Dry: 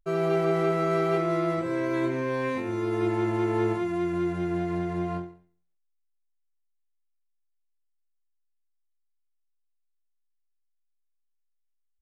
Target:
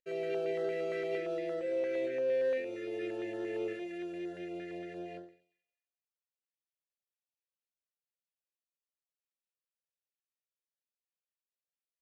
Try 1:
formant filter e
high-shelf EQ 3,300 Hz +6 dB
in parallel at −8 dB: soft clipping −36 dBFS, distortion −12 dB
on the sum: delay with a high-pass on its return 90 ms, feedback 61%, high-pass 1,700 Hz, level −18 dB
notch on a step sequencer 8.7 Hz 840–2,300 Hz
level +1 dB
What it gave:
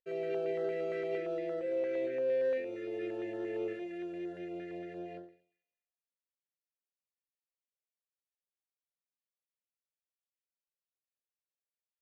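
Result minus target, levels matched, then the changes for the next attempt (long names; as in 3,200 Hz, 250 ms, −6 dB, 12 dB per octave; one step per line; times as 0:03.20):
4,000 Hz band −4.0 dB
change: high-shelf EQ 3,300 Hz +15.5 dB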